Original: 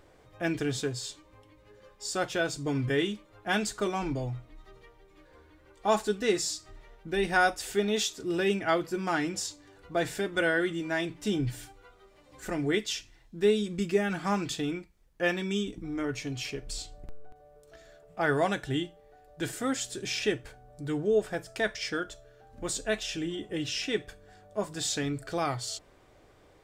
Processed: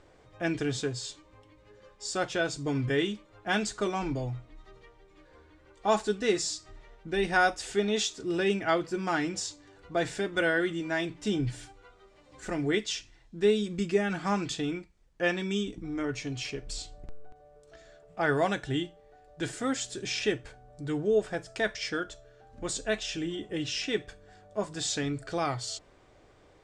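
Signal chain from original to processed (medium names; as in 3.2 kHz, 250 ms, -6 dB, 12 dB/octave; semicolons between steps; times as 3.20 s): low-pass 8.6 kHz 24 dB/octave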